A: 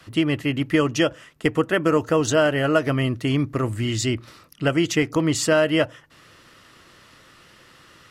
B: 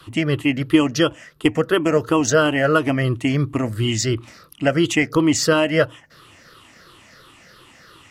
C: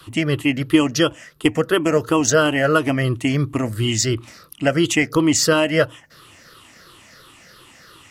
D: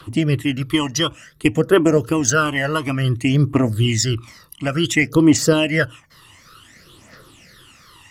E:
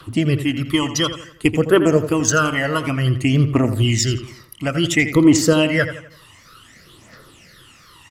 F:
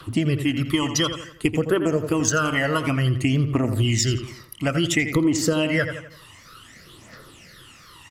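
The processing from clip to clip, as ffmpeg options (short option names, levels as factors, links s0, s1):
-af "afftfilt=real='re*pow(10,11/40*sin(2*PI*(0.62*log(max(b,1)*sr/1024/100)/log(2)-(-2.9)*(pts-256)/sr)))':imag='im*pow(10,11/40*sin(2*PI*(0.62*log(max(b,1)*sr/1024/100)/log(2)-(-2.9)*(pts-256)/sr)))':win_size=1024:overlap=0.75,volume=1.19"
-af "highshelf=f=5600:g=6.5"
-af "aphaser=in_gain=1:out_gain=1:delay=1.1:decay=0.61:speed=0.56:type=triangular,volume=0.75"
-filter_complex "[0:a]asplit=2[s0][s1];[s1]adelay=84,lowpass=f=4100:p=1,volume=0.299,asplit=2[s2][s3];[s3]adelay=84,lowpass=f=4100:p=1,volume=0.43,asplit=2[s4][s5];[s5]adelay=84,lowpass=f=4100:p=1,volume=0.43,asplit=2[s6][s7];[s7]adelay=84,lowpass=f=4100:p=1,volume=0.43,asplit=2[s8][s9];[s9]adelay=84,lowpass=f=4100:p=1,volume=0.43[s10];[s0][s2][s4][s6][s8][s10]amix=inputs=6:normalize=0"
-af "acompressor=threshold=0.141:ratio=6"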